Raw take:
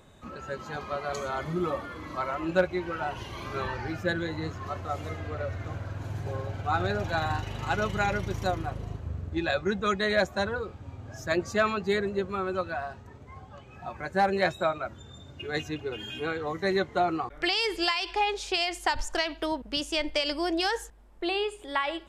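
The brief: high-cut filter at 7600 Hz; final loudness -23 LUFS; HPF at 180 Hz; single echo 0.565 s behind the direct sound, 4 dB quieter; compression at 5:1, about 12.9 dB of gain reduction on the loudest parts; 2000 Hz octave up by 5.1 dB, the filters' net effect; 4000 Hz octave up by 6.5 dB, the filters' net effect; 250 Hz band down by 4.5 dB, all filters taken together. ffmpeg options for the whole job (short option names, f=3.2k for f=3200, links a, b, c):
-af "highpass=180,lowpass=7.6k,equalizer=f=250:t=o:g=-6,equalizer=f=2k:t=o:g=5,equalizer=f=4k:t=o:g=7,acompressor=threshold=-33dB:ratio=5,aecho=1:1:565:0.631,volume=12.5dB"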